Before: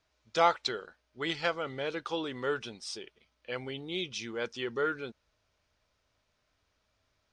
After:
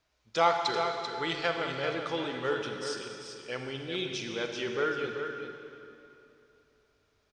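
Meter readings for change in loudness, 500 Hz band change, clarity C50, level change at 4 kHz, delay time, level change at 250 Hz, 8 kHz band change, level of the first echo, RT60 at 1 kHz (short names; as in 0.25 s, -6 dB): +1.5 dB, +2.5 dB, 2.5 dB, +2.0 dB, 0.389 s, +2.0 dB, +2.0 dB, -7.5 dB, 2.8 s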